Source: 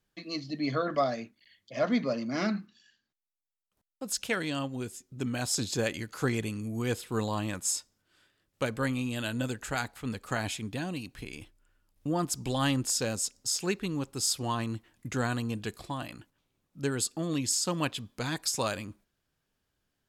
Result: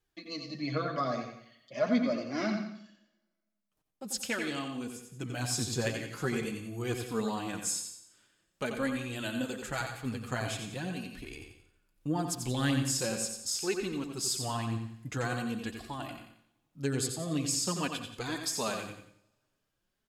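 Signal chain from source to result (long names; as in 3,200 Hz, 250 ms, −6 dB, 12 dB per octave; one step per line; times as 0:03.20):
flanger 0.44 Hz, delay 2.3 ms, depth 6.3 ms, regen +7%
repeating echo 89 ms, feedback 37%, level −7 dB
on a send at −10.5 dB: convolution reverb, pre-delay 83 ms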